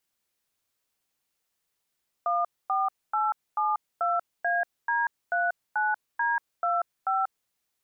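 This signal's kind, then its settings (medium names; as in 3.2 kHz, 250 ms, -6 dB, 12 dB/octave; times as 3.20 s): DTMF "14872AD39D25", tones 188 ms, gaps 249 ms, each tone -25.5 dBFS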